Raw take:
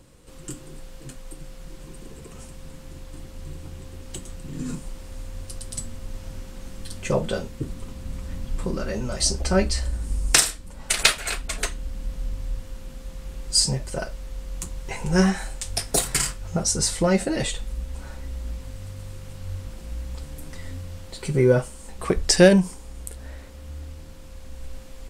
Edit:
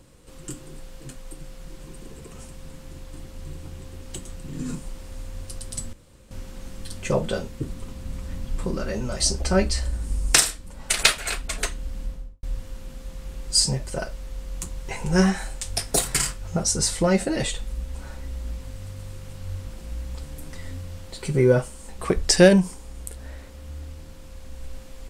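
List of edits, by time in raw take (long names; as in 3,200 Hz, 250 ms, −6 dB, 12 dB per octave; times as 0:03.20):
0:05.93–0:06.31: fill with room tone
0:12.00–0:12.43: fade out and dull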